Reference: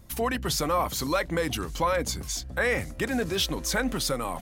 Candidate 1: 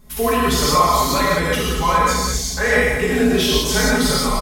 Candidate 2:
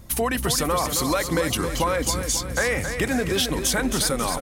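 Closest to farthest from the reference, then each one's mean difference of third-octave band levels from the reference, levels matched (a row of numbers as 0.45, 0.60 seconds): 2, 1; 5.0, 8.0 decibels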